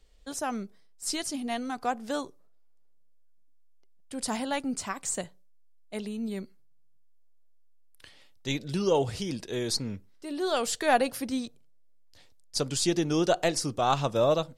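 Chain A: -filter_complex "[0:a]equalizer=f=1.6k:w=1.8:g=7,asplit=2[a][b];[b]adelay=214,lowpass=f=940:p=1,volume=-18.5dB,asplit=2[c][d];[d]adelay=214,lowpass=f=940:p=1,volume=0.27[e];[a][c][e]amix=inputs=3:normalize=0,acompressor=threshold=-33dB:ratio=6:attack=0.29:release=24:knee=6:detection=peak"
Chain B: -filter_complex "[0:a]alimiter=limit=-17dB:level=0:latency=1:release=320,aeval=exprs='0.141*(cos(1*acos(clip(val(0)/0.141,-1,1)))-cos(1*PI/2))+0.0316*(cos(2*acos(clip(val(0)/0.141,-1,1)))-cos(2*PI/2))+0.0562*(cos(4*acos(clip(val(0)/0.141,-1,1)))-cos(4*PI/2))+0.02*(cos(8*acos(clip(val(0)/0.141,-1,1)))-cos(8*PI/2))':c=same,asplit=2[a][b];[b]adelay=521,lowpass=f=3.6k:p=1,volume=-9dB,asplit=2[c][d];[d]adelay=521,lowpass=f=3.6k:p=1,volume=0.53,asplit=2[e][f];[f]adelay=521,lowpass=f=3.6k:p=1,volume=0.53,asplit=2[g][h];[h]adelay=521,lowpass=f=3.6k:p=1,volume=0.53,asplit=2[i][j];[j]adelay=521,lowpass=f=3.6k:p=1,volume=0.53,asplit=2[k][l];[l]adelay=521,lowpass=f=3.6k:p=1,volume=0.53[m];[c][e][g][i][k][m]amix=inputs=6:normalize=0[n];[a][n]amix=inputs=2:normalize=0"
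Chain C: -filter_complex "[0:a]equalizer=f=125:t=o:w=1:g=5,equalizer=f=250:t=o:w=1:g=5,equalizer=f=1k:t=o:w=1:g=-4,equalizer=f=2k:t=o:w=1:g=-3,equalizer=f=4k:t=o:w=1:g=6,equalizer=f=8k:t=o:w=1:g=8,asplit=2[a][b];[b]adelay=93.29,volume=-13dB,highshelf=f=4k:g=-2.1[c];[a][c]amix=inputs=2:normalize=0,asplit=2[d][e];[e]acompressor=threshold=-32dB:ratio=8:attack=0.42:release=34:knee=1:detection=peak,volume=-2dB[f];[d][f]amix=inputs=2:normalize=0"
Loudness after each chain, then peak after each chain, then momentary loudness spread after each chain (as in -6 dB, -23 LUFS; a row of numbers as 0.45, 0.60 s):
-38.5, -28.5, -24.5 LUFS; -27.0, -11.0, -6.5 dBFS; 10, 18, 10 LU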